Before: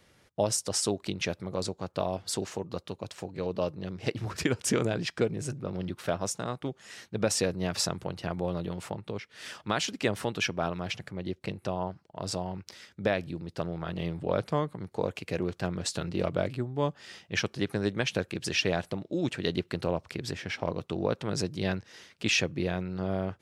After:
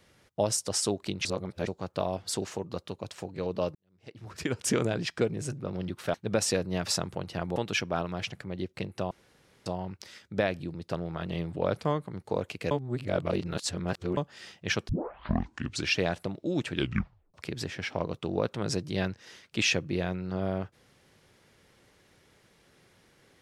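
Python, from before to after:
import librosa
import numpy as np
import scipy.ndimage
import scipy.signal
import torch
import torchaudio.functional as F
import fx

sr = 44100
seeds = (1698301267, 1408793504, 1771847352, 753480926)

y = fx.edit(x, sr, fx.reverse_span(start_s=1.25, length_s=0.42),
    fx.fade_in_span(start_s=3.75, length_s=0.9, curve='qua'),
    fx.cut(start_s=6.14, length_s=0.89),
    fx.cut(start_s=8.45, length_s=1.78),
    fx.room_tone_fill(start_s=11.78, length_s=0.55),
    fx.reverse_span(start_s=15.38, length_s=1.46),
    fx.tape_start(start_s=17.56, length_s=1.05),
    fx.tape_stop(start_s=19.37, length_s=0.64), tone=tone)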